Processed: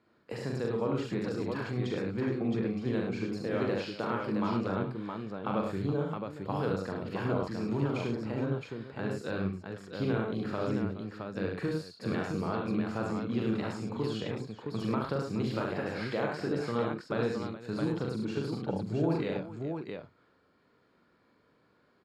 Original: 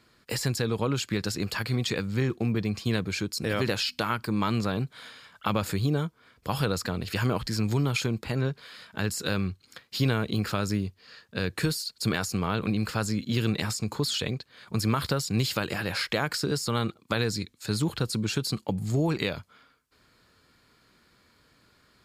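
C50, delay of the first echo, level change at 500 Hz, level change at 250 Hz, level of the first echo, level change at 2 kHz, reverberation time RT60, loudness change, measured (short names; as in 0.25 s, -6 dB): none, 42 ms, -0.5 dB, -2.5 dB, -4.0 dB, -7.5 dB, none, -4.5 dB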